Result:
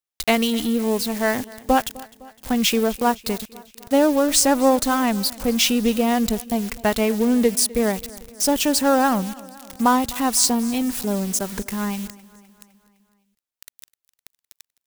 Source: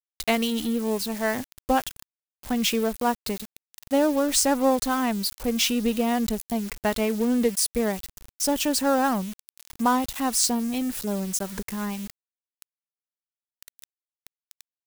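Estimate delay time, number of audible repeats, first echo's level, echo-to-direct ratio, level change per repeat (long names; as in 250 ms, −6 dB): 255 ms, 3, −21.0 dB, −19.0 dB, −4.5 dB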